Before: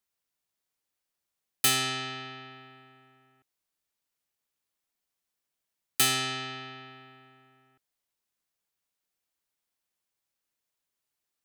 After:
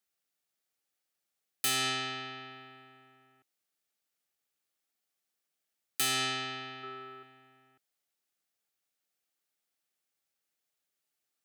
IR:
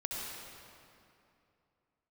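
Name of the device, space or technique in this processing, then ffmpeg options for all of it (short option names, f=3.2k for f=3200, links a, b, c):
PA system with an anti-feedback notch: -filter_complex "[0:a]highpass=f=170:p=1,asuperstop=centerf=1000:order=4:qfactor=6.7,alimiter=limit=-19.5dB:level=0:latency=1:release=227,asettb=1/sr,asplit=3[a][b][c];[a]atrim=end=6.834[d];[b]atrim=start=6.83:end=7.23,asetpts=PTS-STARTPTS,afade=t=in:d=0.004:c=qsin,afade=t=out:st=0.396:d=0.004:c=qsin,equalizer=f=400:t=o:w=0.33:g=11,equalizer=f=1.25k:t=o:w=0.33:g=11,equalizer=f=16k:t=o:w=0.33:g=4[e];[c]atrim=start=7.226[f];[d][e]acrossfade=d=0.004:c1=hsin:c2=qsin[g];[g][f]acrossfade=d=0.004:c1=qsin:c2=hsin"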